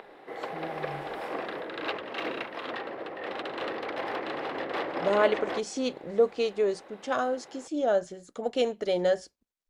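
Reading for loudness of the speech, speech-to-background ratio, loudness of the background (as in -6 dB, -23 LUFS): -28.5 LUFS, 6.5 dB, -35.0 LUFS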